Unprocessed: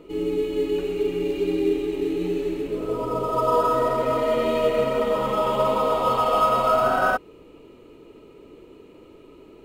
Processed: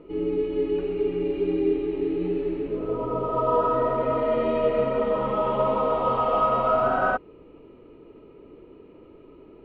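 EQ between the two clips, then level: distance through air 460 m; 0.0 dB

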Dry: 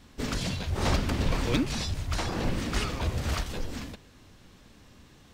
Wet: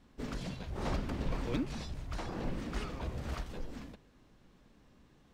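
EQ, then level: peaking EQ 92 Hz -14 dB 0.26 oct; treble shelf 2.1 kHz -9.5 dB; -7.0 dB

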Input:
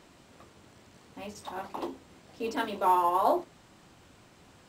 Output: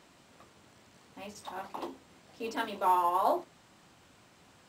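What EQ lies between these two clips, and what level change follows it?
bass shelf 88 Hz -10 dB; peaking EQ 370 Hz -3 dB 1.3 oct; -1.5 dB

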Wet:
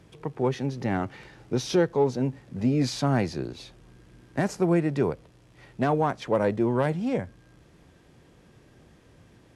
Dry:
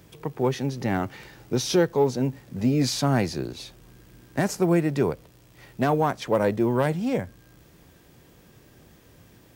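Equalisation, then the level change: brick-wall FIR low-pass 12 kHz; treble shelf 5.1 kHz -8.5 dB; -1.5 dB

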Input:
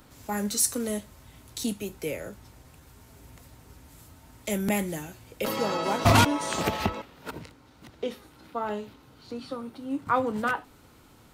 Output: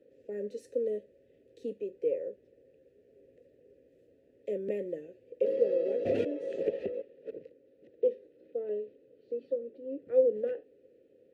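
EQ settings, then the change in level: vowel filter e; resonant low shelf 640 Hz +14 dB, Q 3; -8.5 dB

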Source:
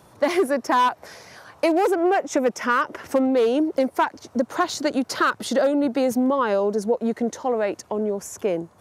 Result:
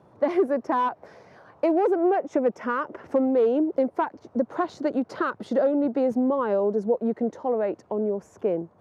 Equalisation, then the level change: band-pass filter 300 Hz, Q 0.52; peaking EQ 270 Hz -2.5 dB 0.66 oct; 0.0 dB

